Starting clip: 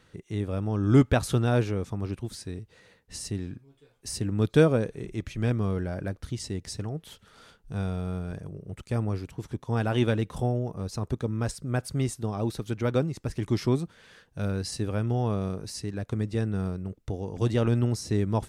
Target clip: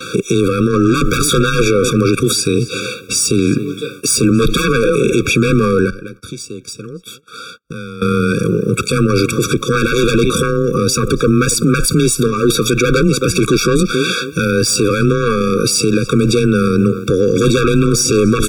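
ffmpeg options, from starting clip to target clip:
ffmpeg -i in.wav -filter_complex "[0:a]highpass=frequency=600:poles=1,bandreject=frequency=1600:width=21,asplit=2[link_01][link_02];[link_02]adelay=272,lowpass=frequency=3100:poles=1,volume=-22dB,asplit=2[link_03][link_04];[link_04]adelay=272,lowpass=frequency=3100:poles=1,volume=0.21[link_05];[link_01][link_03][link_05]amix=inputs=3:normalize=0,aeval=exprs='0.266*sin(PI/2*7.08*val(0)/0.266)':channel_layout=same,asettb=1/sr,asplit=3[link_06][link_07][link_08];[link_06]atrim=end=5.904[link_09];[link_07]atrim=start=5.9:end=8.02,asetpts=PTS-STARTPTS,afade=type=in:duration=0.004:curve=qsin,afade=type=out:start_time=2.116:duration=0.004:curve=qsin,acompressor=threshold=-50dB:ratio=4[link_10];[link_08]atrim=start=8.016[link_11];[link_09][link_10]acrossfade=duration=0.004:curve1=hsin:curve2=qsin[link_12];[link_12][link_11]acrossfade=duration=0.004:curve1=qsin:curve2=hsin,afreqshift=17,agate=range=-35dB:threshold=-51dB:ratio=16:detection=peak,alimiter=level_in=22dB:limit=-1dB:release=50:level=0:latency=1,afftfilt=real='re*eq(mod(floor(b*sr/1024/550),2),0)':imag='im*eq(mod(floor(b*sr/1024/550),2),0)':win_size=1024:overlap=0.75,volume=-2.5dB" out.wav

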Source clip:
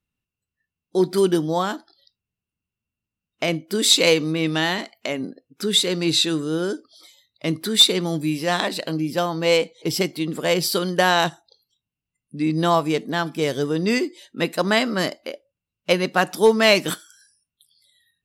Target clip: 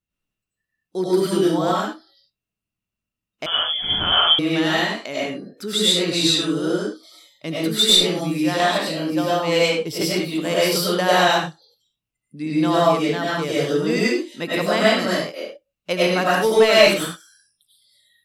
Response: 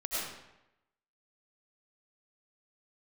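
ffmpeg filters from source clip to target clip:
-filter_complex "[1:a]atrim=start_sample=2205,afade=type=out:start_time=0.27:duration=0.01,atrim=end_sample=12348[link_01];[0:a][link_01]afir=irnorm=-1:irlink=0,asettb=1/sr,asplit=3[link_02][link_03][link_04];[link_02]atrim=end=3.464[link_05];[link_03]atrim=start=3.46:end=4.39,asetpts=PTS-STARTPTS,afade=type=in:duration=0.004:curve=qsin,afade=type=out:start_time=0.926:duration=0.004:curve=qsin,lowpass=frequency=3100:width_type=q:width=0.5098,lowpass=frequency=3100:width_type=q:width=0.6013,lowpass=frequency=3100:width_type=q:width=0.9,lowpass=frequency=3100:width_type=q:width=2.563,afreqshift=-3600[link_06];[link_04]atrim=start=4.386[link_07];[link_05][link_06]acrossfade=duration=0.004:curve1=hsin:curve2=qsin[link_08];[link_08][link_07]acrossfade=duration=0.004:curve1=qsin:curve2=hsin,volume=-2.5dB"

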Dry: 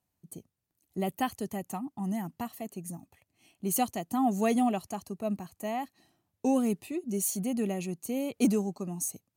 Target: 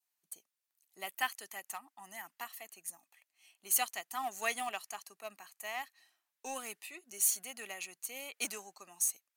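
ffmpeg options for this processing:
ffmpeg -i in.wav -filter_complex "[0:a]highpass=1300,adynamicequalizer=threshold=0.00112:dfrequency=1800:dqfactor=1.5:tfrequency=1800:tqfactor=1.5:attack=5:release=100:ratio=0.375:range=2.5:mode=boostabove:tftype=bell,asplit=2[link_01][link_02];[link_02]aeval=exprs='val(0)*gte(abs(val(0)),0.0168)':channel_layout=same,volume=-12dB[link_03];[link_01][link_03]amix=inputs=2:normalize=0" out.wav

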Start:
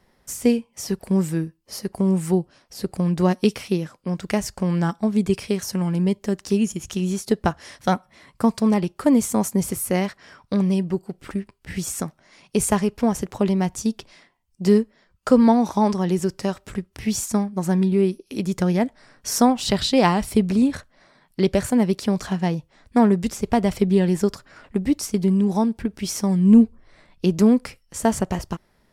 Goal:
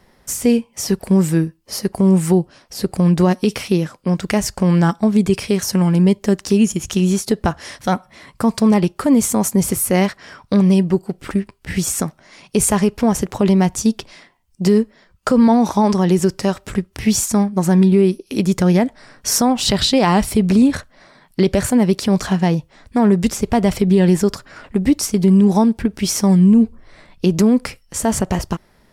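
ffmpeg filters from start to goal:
ffmpeg -i in.wav -af "alimiter=limit=-13.5dB:level=0:latency=1:release=64,volume=8dB" out.wav

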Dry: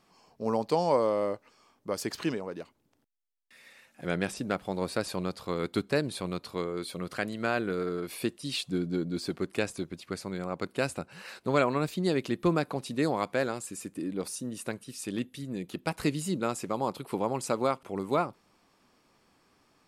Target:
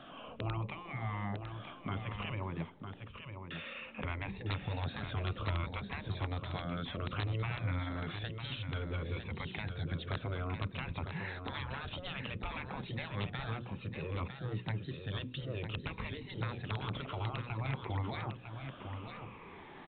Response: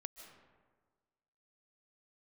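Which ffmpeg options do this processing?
-filter_complex "[0:a]afftfilt=real='re*pow(10,13/40*sin(2*PI*(0.84*log(max(b,1)*sr/1024/100)/log(2)-(-0.59)*(pts-256)/sr)))':imag='im*pow(10,13/40*sin(2*PI*(0.84*log(max(b,1)*sr/1024/100)/log(2)-(-0.59)*(pts-256)/sr)))':win_size=1024:overlap=0.75,afftfilt=real='re*lt(hypot(re,im),0.0794)':imag='im*lt(hypot(re,im),0.0794)':win_size=1024:overlap=0.75,acrossover=split=170[link_01][link_02];[link_02]acompressor=threshold=-55dB:ratio=5[link_03];[link_01][link_03]amix=inputs=2:normalize=0,bandreject=frequency=60:width_type=h:width=6,bandreject=frequency=120:width_type=h:width=6,bandreject=frequency=180:width_type=h:width=6,bandreject=frequency=240:width_type=h:width=6,bandreject=frequency=300:width_type=h:width=6,bandreject=frequency=360:width_type=h:width=6,bandreject=frequency=420:width_type=h:width=6,bandreject=frequency=480:width_type=h:width=6,bandreject=frequency=540:width_type=h:width=6,aresample=8000,aeval=exprs='(mod(106*val(0)+1,2)-1)/106':channel_layout=same,aresample=44100,aecho=1:1:954:0.422,volume=13.5dB"

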